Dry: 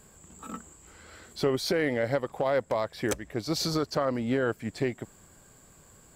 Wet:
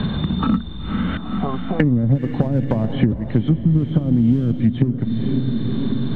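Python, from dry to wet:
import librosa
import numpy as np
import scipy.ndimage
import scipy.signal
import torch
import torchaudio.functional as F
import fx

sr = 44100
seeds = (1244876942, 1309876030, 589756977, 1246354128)

p1 = fx.freq_compress(x, sr, knee_hz=2800.0, ratio=4.0)
p2 = fx.dynamic_eq(p1, sr, hz=670.0, q=0.79, threshold_db=-40.0, ratio=4.0, max_db=-4)
p3 = fx.formant_cascade(p2, sr, vowel='a', at=(1.17, 1.8))
p4 = fx.env_lowpass_down(p3, sr, base_hz=360.0, full_db=-26.0)
p5 = fx.backlash(p4, sr, play_db=-29.5)
p6 = p4 + F.gain(torch.from_numpy(p5), -5.0).numpy()
p7 = fx.low_shelf_res(p6, sr, hz=300.0, db=10.5, q=1.5)
p8 = p7 + fx.echo_diffused(p7, sr, ms=478, feedback_pct=48, wet_db=-11.5, dry=0)
p9 = fx.band_squash(p8, sr, depth_pct=100)
y = F.gain(torch.from_numpy(p9), 4.5).numpy()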